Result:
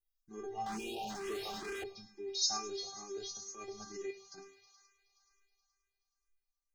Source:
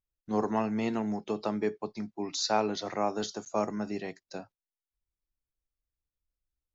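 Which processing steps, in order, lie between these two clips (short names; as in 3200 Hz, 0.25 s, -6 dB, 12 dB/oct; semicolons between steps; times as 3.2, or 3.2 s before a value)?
thin delay 0.106 s, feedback 83%, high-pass 1800 Hz, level -11.5 dB; random-step tremolo; metallic resonator 390 Hz, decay 0.36 s, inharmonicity 0.002; 3.17–4.38 transient shaper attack -8 dB, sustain -3 dB; tone controls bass +11 dB, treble +12 dB; notch 970 Hz, Q 17; 0.66–1.84 overdrive pedal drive 39 dB, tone 3600 Hz, clips at -41.5 dBFS; 0.77–1.1 spectral delete 950–2400 Hz; on a send at -20 dB: reverb RT60 0.40 s, pre-delay 76 ms; on the sum: endless phaser +2.2 Hz; gain +10 dB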